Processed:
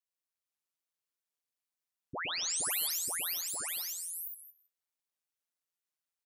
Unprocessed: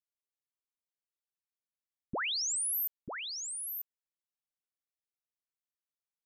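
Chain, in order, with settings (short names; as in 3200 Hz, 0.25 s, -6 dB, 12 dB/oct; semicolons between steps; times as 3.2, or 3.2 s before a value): HPF 1400 Hz 6 dB/oct; tilt -3.5 dB/oct; ring modulator 86 Hz; tapped delay 0.115/0.243/0.288/0.466/0.535/0.686 s -3.5/-16.5/-16.5/-5/-5/-16.5 dB; digital reverb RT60 0.46 s, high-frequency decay 0.5×, pre-delay 0.1 s, DRR 13.5 dB; in parallel at -1 dB: limiter -41 dBFS, peak gain reduction 9.5 dB; on the sum: high shelf 5500 Hz +11.5 dB; record warp 78 rpm, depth 250 cents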